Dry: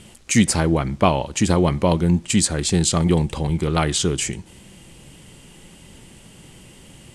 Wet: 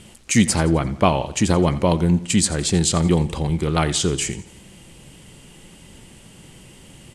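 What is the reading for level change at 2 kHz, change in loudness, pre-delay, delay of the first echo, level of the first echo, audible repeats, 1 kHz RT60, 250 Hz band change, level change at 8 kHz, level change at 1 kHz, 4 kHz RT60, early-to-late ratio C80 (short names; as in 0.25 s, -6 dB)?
0.0 dB, 0.0 dB, none, 86 ms, -17.0 dB, 3, none, 0.0 dB, 0.0 dB, 0.0 dB, none, none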